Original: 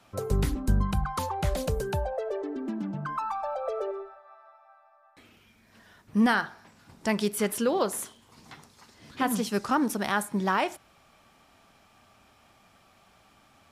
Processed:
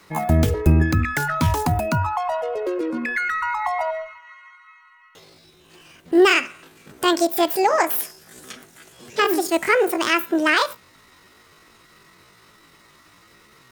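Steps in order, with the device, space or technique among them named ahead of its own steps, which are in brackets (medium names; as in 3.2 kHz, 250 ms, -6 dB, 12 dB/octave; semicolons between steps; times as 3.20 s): chipmunk voice (pitch shift +8.5 st); 7.90–8.53 s: peaking EQ 10 kHz +7.5 dB 1.9 oct; trim +8 dB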